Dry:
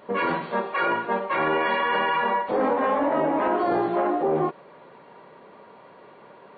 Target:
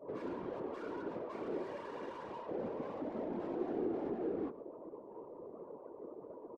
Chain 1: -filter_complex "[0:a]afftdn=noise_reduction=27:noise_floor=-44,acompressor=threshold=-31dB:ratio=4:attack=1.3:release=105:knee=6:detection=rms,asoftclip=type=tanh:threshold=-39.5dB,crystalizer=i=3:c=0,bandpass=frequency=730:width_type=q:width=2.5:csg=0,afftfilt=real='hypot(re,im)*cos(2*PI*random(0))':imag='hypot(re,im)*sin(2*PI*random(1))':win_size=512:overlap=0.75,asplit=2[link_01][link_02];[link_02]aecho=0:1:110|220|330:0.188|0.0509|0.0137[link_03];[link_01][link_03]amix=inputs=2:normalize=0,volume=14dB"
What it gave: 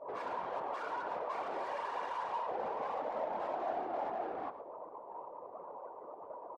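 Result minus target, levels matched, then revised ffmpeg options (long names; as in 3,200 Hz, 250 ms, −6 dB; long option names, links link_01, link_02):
250 Hz band −13.0 dB; echo-to-direct +7.5 dB
-filter_complex "[0:a]afftdn=noise_reduction=27:noise_floor=-44,acompressor=threshold=-31dB:ratio=4:attack=1.3:release=105:knee=6:detection=rms,asoftclip=type=tanh:threshold=-39.5dB,crystalizer=i=3:c=0,bandpass=frequency=350:width_type=q:width=2.5:csg=0,afftfilt=real='hypot(re,im)*cos(2*PI*random(0))':imag='hypot(re,im)*sin(2*PI*random(1))':win_size=512:overlap=0.75,asplit=2[link_01][link_02];[link_02]aecho=0:1:110|220:0.0794|0.0214[link_03];[link_01][link_03]amix=inputs=2:normalize=0,volume=14dB"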